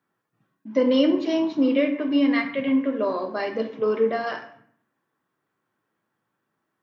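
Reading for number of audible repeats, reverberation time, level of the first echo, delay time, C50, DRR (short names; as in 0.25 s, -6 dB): none, 0.65 s, none, none, 10.0 dB, 5.0 dB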